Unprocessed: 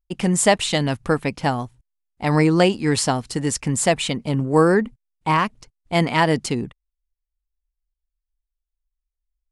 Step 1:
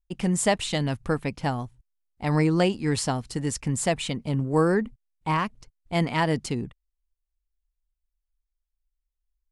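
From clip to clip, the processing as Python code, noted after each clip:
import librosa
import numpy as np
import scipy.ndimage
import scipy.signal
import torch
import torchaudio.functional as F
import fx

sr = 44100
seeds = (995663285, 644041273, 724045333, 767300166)

y = fx.low_shelf(x, sr, hz=130.0, db=8.0)
y = y * 10.0 ** (-7.0 / 20.0)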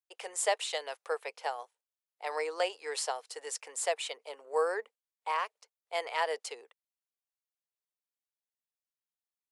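y = scipy.signal.sosfilt(scipy.signal.cheby1(5, 1.0, 450.0, 'highpass', fs=sr, output='sos'), x)
y = y * 10.0 ** (-5.0 / 20.0)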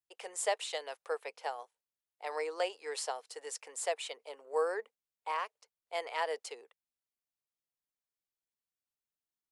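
y = fx.low_shelf(x, sr, hz=310.0, db=7.0)
y = y * 10.0 ** (-4.0 / 20.0)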